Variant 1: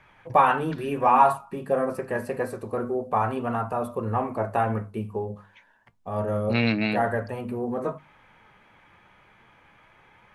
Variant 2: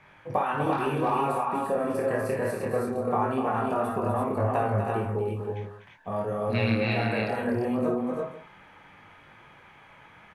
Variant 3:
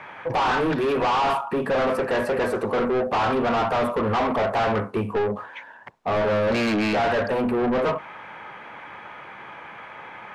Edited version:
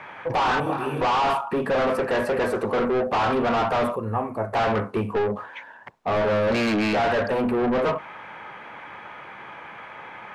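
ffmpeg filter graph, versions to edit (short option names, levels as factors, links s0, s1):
-filter_complex "[2:a]asplit=3[s0][s1][s2];[s0]atrim=end=0.602[s3];[1:a]atrim=start=0.598:end=1.012[s4];[s1]atrim=start=1.008:end=3.962[s5];[0:a]atrim=start=3.958:end=4.532[s6];[s2]atrim=start=4.528[s7];[s3][s4]acrossfade=d=0.004:c1=hsin:c2=hsin[s8];[s8][s5]acrossfade=d=0.004:c1=hsin:c2=hsin[s9];[s9][s6]acrossfade=d=0.004:c1=hsin:c2=hsin[s10];[s10][s7]acrossfade=d=0.004:c1=hsin:c2=hsin"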